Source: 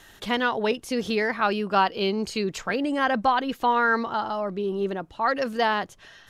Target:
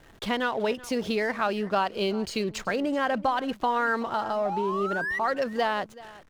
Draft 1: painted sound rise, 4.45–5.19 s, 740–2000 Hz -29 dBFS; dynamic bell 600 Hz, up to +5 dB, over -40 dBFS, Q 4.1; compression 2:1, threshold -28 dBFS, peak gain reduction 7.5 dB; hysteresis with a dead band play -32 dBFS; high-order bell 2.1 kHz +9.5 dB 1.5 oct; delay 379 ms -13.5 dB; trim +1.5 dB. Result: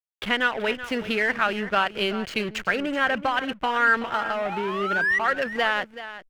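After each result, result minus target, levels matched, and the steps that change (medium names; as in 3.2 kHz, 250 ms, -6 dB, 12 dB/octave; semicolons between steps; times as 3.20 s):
hysteresis with a dead band: distortion +9 dB; 2 kHz band +5.0 dB; echo-to-direct +6 dB
change: hysteresis with a dead band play -42 dBFS; remove: high-order bell 2.1 kHz +9.5 dB 1.5 oct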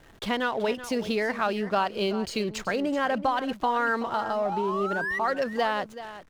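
echo-to-direct +6 dB
change: delay 379 ms -19.5 dB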